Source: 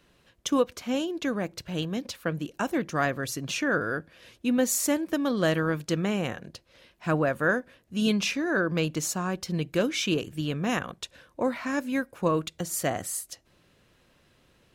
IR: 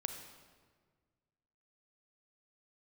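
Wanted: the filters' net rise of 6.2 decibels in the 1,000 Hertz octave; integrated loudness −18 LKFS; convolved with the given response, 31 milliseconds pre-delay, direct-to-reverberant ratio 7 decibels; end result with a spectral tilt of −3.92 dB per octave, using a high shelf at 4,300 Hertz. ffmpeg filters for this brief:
-filter_complex "[0:a]equalizer=frequency=1000:width_type=o:gain=8,highshelf=frequency=4300:gain=3.5,asplit=2[link_01][link_02];[1:a]atrim=start_sample=2205,adelay=31[link_03];[link_02][link_03]afir=irnorm=-1:irlink=0,volume=-7dB[link_04];[link_01][link_04]amix=inputs=2:normalize=0,volume=7.5dB"

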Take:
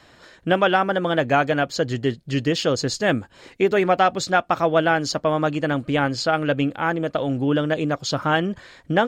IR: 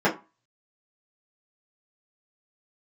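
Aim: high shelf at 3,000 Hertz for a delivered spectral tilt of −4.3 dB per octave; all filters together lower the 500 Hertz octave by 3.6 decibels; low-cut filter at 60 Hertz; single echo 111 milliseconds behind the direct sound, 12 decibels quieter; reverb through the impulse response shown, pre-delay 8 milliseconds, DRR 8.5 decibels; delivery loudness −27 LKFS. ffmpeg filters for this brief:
-filter_complex "[0:a]highpass=60,equalizer=frequency=500:width_type=o:gain=-5,highshelf=frequency=3000:gain=6.5,aecho=1:1:111:0.251,asplit=2[link_01][link_02];[1:a]atrim=start_sample=2205,adelay=8[link_03];[link_02][link_03]afir=irnorm=-1:irlink=0,volume=-25.5dB[link_04];[link_01][link_04]amix=inputs=2:normalize=0,volume=-6dB"

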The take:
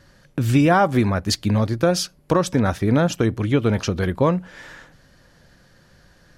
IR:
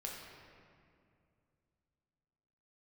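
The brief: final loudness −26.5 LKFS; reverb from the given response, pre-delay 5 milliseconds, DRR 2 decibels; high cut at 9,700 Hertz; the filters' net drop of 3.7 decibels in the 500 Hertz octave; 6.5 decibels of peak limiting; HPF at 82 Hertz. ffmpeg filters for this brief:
-filter_complex "[0:a]highpass=82,lowpass=9700,equalizer=frequency=500:width_type=o:gain=-4.5,alimiter=limit=-12.5dB:level=0:latency=1,asplit=2[link_01][link_02];[1:a]atrim=start_sample=2205,adelay=5[link_03];[link_02][link_03]afir=irnorm=-1:irlink=0,volume=-1.5dB[link_04];[link_01][link_04]amix=inputs=2:normalize=0,volume=-4.5dB"

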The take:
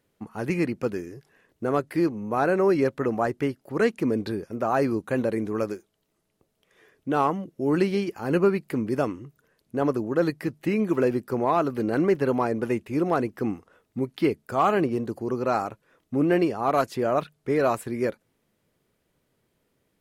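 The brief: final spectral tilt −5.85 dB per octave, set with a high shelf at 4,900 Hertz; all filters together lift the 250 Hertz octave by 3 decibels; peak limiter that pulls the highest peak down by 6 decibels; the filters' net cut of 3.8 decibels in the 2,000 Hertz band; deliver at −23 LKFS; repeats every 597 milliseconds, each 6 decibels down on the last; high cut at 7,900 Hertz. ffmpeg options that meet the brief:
ffmpeg -i in.wav -af "lowpass=7900,equalizer=frequency=250:width_type=o:gain=4,equalizer=frequency=2000:width_type=o:gain=-6.5,highshelf=frequency=4900:gain=7,alimiter=limit=-15dB:level=0:latency=1,aecho=1:1:597|1194|1791|2388|2985|3582:0.501|0.251|0.125|0.0626|0.0313|0.0157,volume=2.5dB" out.wav

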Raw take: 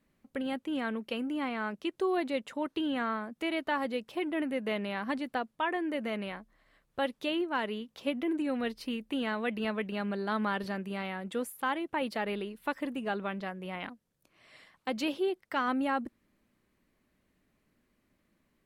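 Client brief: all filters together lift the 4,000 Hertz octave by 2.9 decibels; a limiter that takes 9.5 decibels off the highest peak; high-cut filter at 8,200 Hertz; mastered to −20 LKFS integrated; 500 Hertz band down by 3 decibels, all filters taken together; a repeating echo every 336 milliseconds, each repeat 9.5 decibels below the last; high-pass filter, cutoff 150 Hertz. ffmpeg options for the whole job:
ffmpeg -i in.wav -af "highpass=150,lowpass=8200,equalizer=frequency=500:width_type=o:gain=-4,equalizer=frequency=4000:width_type=o:gain=4.5,alimiter=level_in=3.5dB:limit=-24dB:level=0:latency=1,volume=-3.5dB,aecho=1:1:336|672|1008|1344:0.335|0.111|0.0365|0.012,volume=17.5dB" out.wav

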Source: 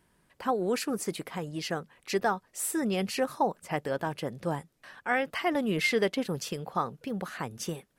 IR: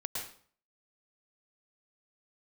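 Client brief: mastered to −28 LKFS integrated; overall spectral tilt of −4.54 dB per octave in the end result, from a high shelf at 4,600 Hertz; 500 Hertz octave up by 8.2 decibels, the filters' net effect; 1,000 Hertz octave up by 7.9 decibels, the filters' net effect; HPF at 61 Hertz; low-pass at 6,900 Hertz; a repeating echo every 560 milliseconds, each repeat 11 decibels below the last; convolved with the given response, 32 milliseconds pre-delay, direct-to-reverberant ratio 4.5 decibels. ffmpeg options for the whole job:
-filter_complex "[0:a]highpass=61,lowpass=6900,equalizer=frequency=500:width_type=o:gain=8,equalizer=frequency=1000:width_type=o:gain=7,highshelf=frequency=4600:gain=5.5,aecho=1:1:560|1120|1680:0.282|0.0789|0.0221,asplit=2[link_01][link_02];[1:a]atrim=start_sample=2205,adelay=32[link_03];[link_02][link_03]afir=irnorm=-1:irlink=0,volume=-6.5dB[link_04];[link_01][link_04]amix=inputs=2:normalize=0,volume=-4.5dB"

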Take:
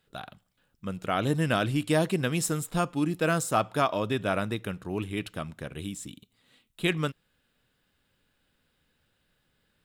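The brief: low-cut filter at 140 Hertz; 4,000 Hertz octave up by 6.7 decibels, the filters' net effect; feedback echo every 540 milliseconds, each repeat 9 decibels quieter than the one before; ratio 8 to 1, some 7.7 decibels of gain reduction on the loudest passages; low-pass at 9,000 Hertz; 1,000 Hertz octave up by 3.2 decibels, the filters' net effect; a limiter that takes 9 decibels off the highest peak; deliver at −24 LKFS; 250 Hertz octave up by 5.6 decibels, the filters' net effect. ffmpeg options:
ffmpeg -i in.wav -af "highpass=140,lowpass=9000,equalizer=frequency=250:width_type=o:gain=8.5,equalizer=frequency=1000:width_type=o:gain=3.5,equalizer=frequency=4000:width_type=o:gain=8.5,acompressor=threshold=-24dB:ratio=8,alimiter=limit=-21.5dB:level=0:latency=1,aecho=1:1:540|1080|1620|2160:0.355|0.124|0.0435|0.0152,volume=9.5dB" out.wav

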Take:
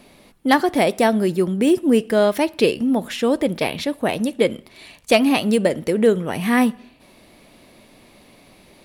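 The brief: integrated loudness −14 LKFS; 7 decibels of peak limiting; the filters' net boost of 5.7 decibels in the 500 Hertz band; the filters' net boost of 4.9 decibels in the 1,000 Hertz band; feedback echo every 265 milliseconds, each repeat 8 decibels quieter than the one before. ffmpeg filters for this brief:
ffmpeg -i in.wav -af "equalizer=frequency=500:width_type=o:gain=6,equalizer=frequency=1000:width_type=o:gain=4,alimiter=limit=-5.5dB:level=0:latency=1,aecho=1:1:265|530|795|1060|1325:0.398|0.159|0.0637|0.0255|0.0102,volume=2.5dB" out.wav

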